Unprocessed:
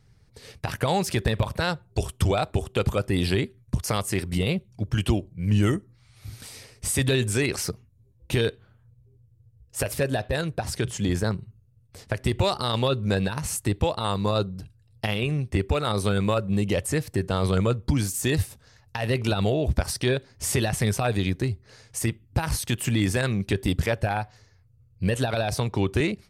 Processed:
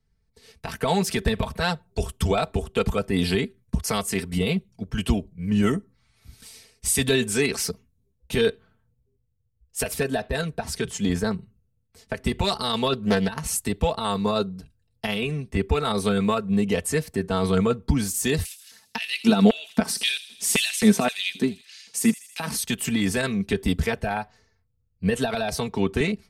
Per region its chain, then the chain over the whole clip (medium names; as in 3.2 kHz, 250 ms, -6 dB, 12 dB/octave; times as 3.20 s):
12.93–13.40 s: transient shaper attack +4 dB, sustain -5 dB + loudspeaker Doppler distortion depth 0.36 ms
18.45–22.57 s: LFO high-pass square 1.9 Hz 210–2700 Hz + feedback echo behind a high-pass 80 ms, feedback 57%, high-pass 4 kHz, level -9.5 dB + tape noise reduction on one side only encoder only
whole clip: band-stop 580 Hz, Q 12; comb 4.5 ms, depth 69%; three bands expanded up and down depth 40%